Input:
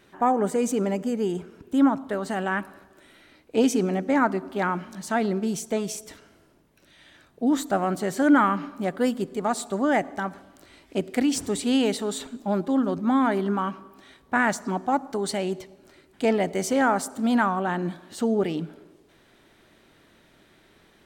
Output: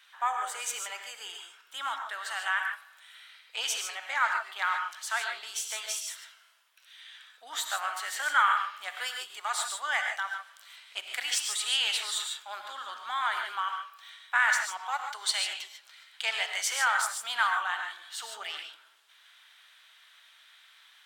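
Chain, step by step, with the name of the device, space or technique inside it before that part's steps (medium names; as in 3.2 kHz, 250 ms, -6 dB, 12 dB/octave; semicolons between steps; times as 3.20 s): 14.91–16.68 s: peaking EQ 3.7 kHz +3 dB 1.9 oct; headphones lying on a table (high-pass 1.1 kHz 24 dB/octave; peaking EQ 3.3 kHz +7 dB 0.54 oct); gated-style reverb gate 170 ms rising, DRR 3.5 dB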